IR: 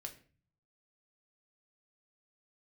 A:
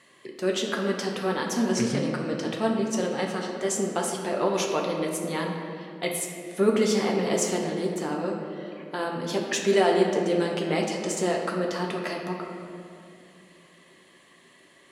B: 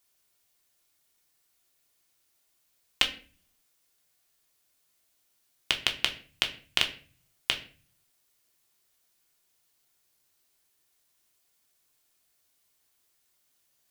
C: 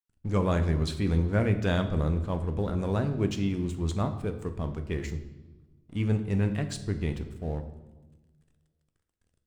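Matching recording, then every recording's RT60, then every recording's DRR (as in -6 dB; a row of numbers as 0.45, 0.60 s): B; 2.5, 0.40, 1.2 s; -1.0, 3.0, 7.0 dB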